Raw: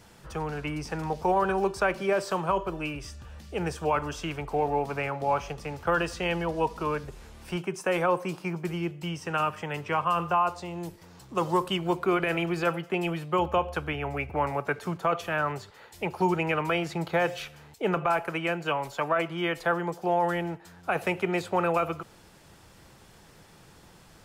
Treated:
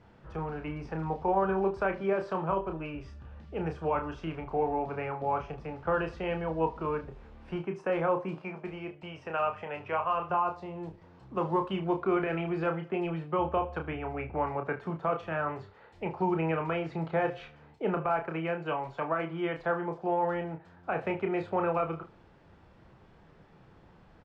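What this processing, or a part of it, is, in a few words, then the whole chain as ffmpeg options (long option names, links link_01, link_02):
phone in a pocket: -filter_complex "[0:a]asettb=1/sr,asplit=3[link_01][link_02][link_03];[link_01]atrim=end=8.374[link_04];[link_02]atrim=start=8.37:end=10.3,asetpts=PTS-STARTPTS,afade=type=in:duration=0.004:curve=qsin,afade=type=out:start_time=1.926:duration=0.004:curve=qsin,equalizer=frequency=160:width_type=o:width=0.33:gain=-12,equalizer=frequency=315:width_type=o:width=0.33:gain=-7,equalizer=frequency=630:width_type=o:width=0.33:gain=5,equalizer=frequency=2500:width_type=o:width=0.33:gain=5[link_05];[link_03]atrim=start=10.296[link_06];[link_04][link_05]acrossfade=duration=0.004:curve1=hsin:curve2=qsin[link_07];[link_07][link_06]acrossfade=duration=0.004:curve1=qsin:curve2=hsin,lowpass=3400,highshelf=frequency=2200:gain=-11,aecho=1:1:31|74:0.501|0.133,volume=-3dB"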